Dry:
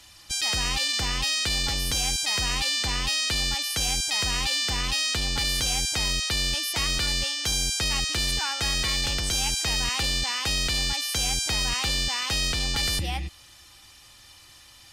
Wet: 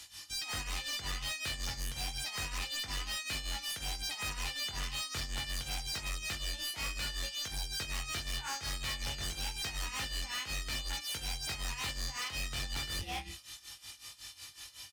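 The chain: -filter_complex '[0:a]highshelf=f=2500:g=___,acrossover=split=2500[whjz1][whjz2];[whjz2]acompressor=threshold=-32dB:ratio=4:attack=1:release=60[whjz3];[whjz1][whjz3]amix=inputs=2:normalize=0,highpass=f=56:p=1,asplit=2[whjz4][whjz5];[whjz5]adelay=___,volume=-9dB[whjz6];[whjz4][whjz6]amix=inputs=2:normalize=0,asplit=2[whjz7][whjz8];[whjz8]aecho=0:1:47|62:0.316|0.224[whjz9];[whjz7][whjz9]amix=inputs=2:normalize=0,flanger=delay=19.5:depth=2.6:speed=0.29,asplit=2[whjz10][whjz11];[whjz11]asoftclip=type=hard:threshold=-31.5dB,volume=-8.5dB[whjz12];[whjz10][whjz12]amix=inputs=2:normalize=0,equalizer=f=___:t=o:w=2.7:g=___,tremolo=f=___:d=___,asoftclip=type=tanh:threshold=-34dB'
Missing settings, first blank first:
6.5, 23, 400, -4, 5.4, 0.84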